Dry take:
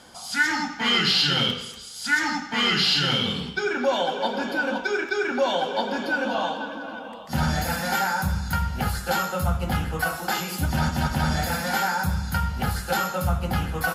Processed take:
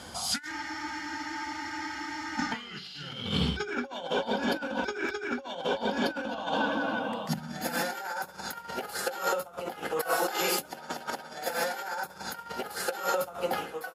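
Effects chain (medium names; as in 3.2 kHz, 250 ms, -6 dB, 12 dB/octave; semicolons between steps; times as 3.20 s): fade out at the end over 0.87 s; compressor with a negative ratio -30 dBFS, ratio -0.5; high-pass sweep 66 Hz -> 430 Hz, 6.61–8.04 s; spectral freeze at 0.53 s, 1.86 s; trim -1.5 dB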